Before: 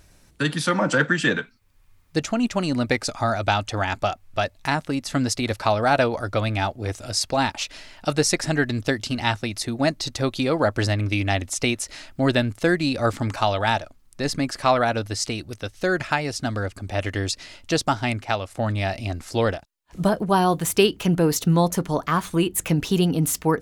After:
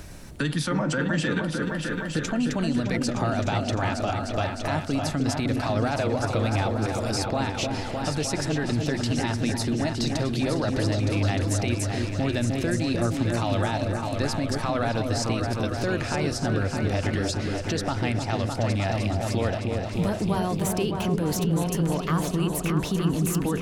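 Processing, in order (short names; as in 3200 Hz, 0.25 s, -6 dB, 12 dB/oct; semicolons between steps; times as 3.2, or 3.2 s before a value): low shelf 400 Hz +5.5 dB; de-hum 125.9 Hz, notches 4; in parallel at -1.5 dB: compressor, threshold -31 dBFS, peak gain reduction 19.5 dB; on the sum: limiter -14 dBFS, peak gain reduction 12 dB; on a send: repeats that get brighter 0.305 s, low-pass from 750 Hz, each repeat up 2 oct, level -3 dB; on the sum: three-band squash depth 40%; gain -4.5 dB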